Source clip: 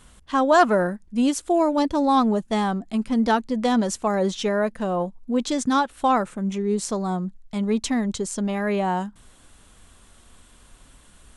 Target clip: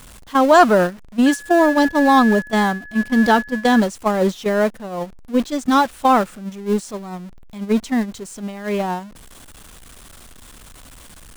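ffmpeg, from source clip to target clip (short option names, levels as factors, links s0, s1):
-filter_complex "[0:a]aeval=exprs='val(0)+0.5*0.0422*sgn(val(0))':c=same,asettb=1/sr,asplit=3[s0][s1][s2];[s0]atrim=end=1.264[s3];[s1]atrim=start=1.26:end=3.8,asetpts=PTS-STARTPTS,afade=t=in:d=0.004:c=qsin,afade=t=out:st=2.536:d=0.004:c=qsin,aeval=exprs='val(0)+0.0447*sin(2*PI*1700*n/s)':c=same[s4];[s2]atrim=start=3.796[s5];[s3][s4]acrossfade=d=0.004:c1=hsin:c2=qsin[s6];[s6][s5]acrossfade=d=0.004:c1=qsin:c2=hsin,agate=range=0.2:threshold=0.1:ratio=16:detection=peak,volume=1.68"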